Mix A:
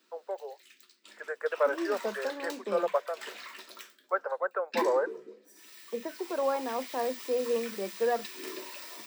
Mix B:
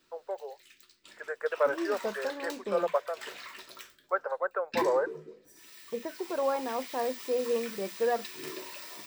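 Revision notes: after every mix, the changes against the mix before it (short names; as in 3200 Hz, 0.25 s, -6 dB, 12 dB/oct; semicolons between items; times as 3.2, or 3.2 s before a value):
master: remove steep high-pass 190 Hz 72 dB/oct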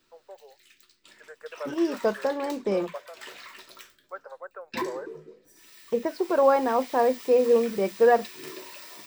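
first voice -10.0 dB; second voice +9.5 dB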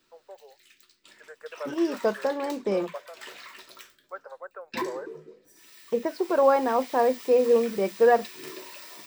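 master: add low shelf 68 Hz -7.5 dB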